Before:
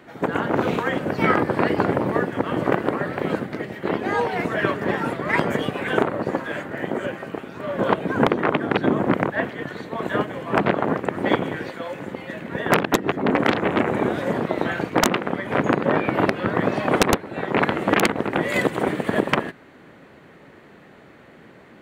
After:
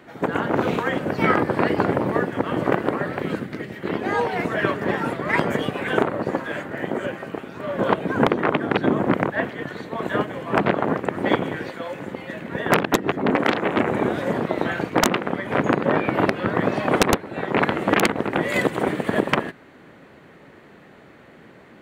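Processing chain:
0:03.19–0:03.95: dynamic equaliser 750 Hz, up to −7 dB, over −39 dBFS, Q 0.99
0:13.36–0:13.77: high-pass filter 190 Hz 6 dB per octave

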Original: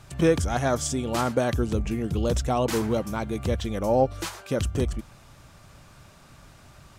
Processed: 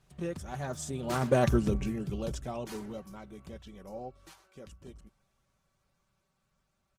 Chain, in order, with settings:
source passing by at 0:01.47, 14 m/s, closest 2.9 metres
comb filter 5.2 ms, depth 47%
dynamic equaliser 130 Hz, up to +7 dB, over −52 dBFS, Q 5.1
Opus 16 kbit/s 48,000 Hz

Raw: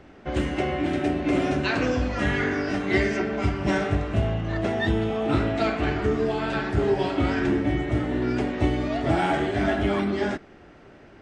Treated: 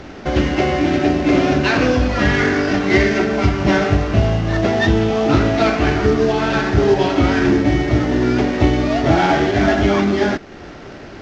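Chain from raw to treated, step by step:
variable-slope delta modulation 32 kbit/s
in parallel at +1.5 dB: downward compressor, threshold −39 dBFS, peak gain reduction 20 dB
on the sum: level +7.5 dB

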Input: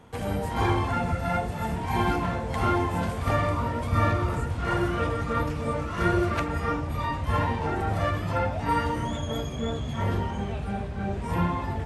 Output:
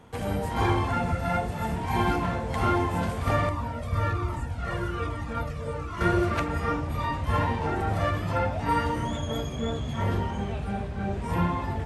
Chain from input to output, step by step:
0:03.49–0:06.01: flanger whose copies keep moving one way falling 1.2 Hz

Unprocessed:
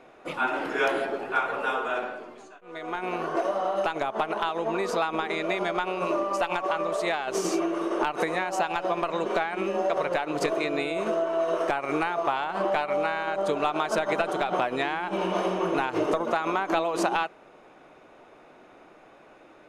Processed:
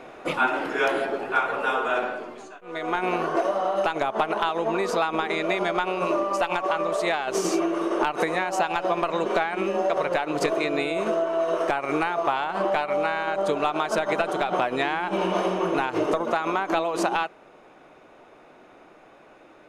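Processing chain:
speech leveller 0.5 s
level +2.5 dB

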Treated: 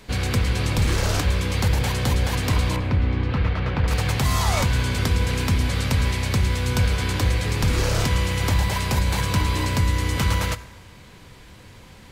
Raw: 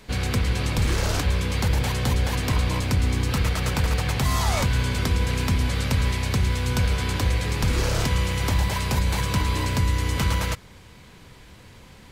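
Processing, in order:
0:02.76–0:03.88: high-frequency loss of the air 330 metres
convolution reverb RT60 1.4 s, pre-delay 5 ms, DRR 13.5 dB
level +1.5 dB

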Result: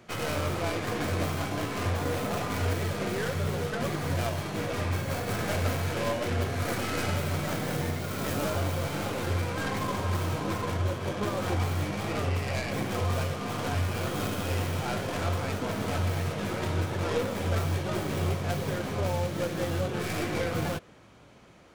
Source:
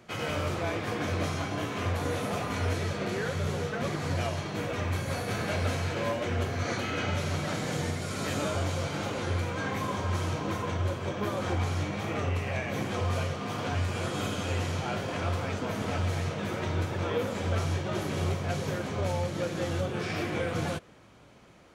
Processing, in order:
stylus tracing distortion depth 0.28 ms
level +1 dB

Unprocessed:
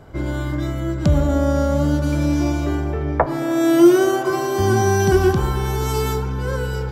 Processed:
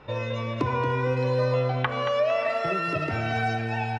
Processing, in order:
low-pass filter 2,700 Hz 24 dB per octave
low-shelf EQ 100 Hz −4.5 dB
mains-hum notches 50/100/150/200 Hz
downward compressor, threshold −17 dBFS, peak gain reduction 10 dB
flanger 0.4 Hz, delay 3.7 ms, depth 1.3 ms, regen −26%
repeating echo 394 ms, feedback 32%, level −9 dB
wrong playback speed 45 rpm record played at 78 rpm

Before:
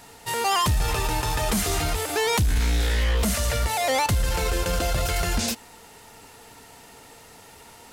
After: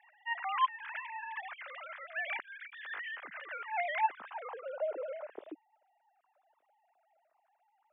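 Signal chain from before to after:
three sine waves on the formant tracks
band-pass filter sweep 1,700 Hz → 290 Hz, 0:03.91–0:05.68
level −7 dB

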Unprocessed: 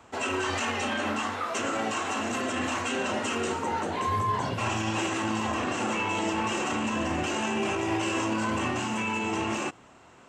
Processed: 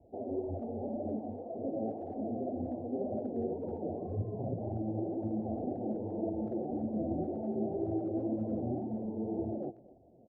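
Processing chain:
Butterworth low-pass 720 Hz 72 dB per octave
flanger 1.9 Hz, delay 0.4 ms, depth 9.1 ms, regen +28%
far-end echo of a speakerphone 240 ms, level −19 dB

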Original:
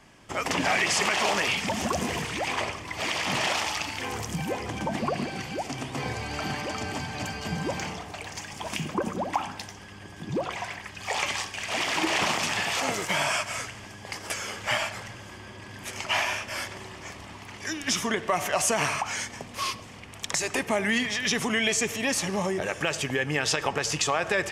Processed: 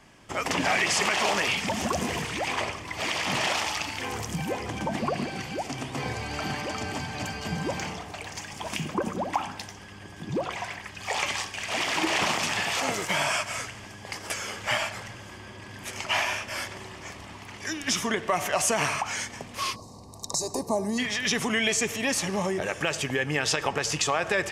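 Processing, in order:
gain on a spectral selection 0:19.76–0:20.98, 1,200–3,700 Hz −25 dB

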